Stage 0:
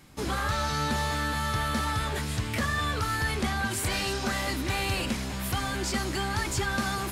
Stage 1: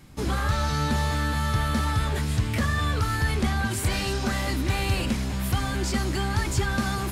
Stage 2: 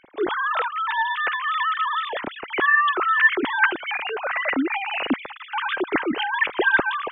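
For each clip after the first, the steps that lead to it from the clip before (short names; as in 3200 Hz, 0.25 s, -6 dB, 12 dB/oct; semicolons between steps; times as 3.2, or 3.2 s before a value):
low shelf 240 Hz +8 dB
sine-wave speech; in parallel at +3 dB: pump 88 bpm, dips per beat 1, -15 dB, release 0.139 s; on the sum: gain -5.5 dB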